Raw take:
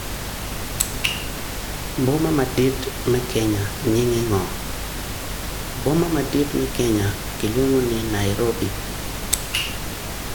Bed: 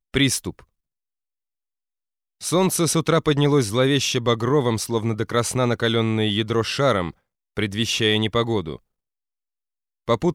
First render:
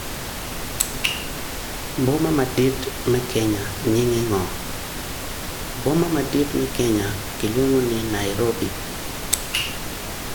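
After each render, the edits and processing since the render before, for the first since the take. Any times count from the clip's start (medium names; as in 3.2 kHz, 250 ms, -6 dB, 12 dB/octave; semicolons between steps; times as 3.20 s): hum notches 50/100/150/200 Hz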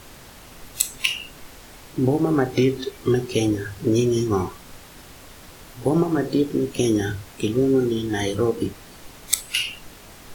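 noise print and reduce 14 dB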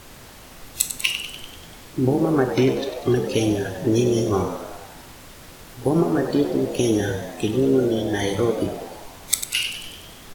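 frequency-shifting echo 97 ms, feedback 62%, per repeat +79 Hz, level -9.5 dB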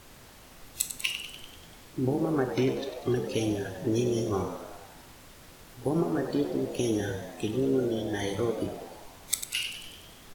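trim -8 dB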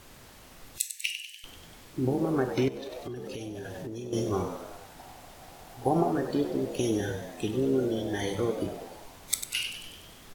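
0.78–1.44 s: rippled Chebyshev high-pass 1.7 kHz, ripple 3 dB; 2.68–4.13 s: compression 10:1, threshold -34 dBFS; 4.99–6.12 s: peaking EQ 750 Hz +13.5 dB 0.47 oct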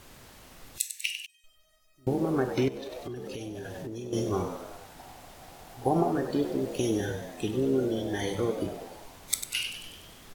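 1.26–2.07 s: feedback comb 630 Hz, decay 0.26 s, mix 100%; 6.35–7.06 s: small samples zeroed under -46 dBFS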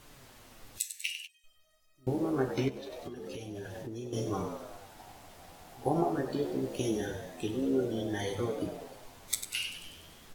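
flange 0.23 Hz, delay 6.4 ms, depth 10 ms, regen -21%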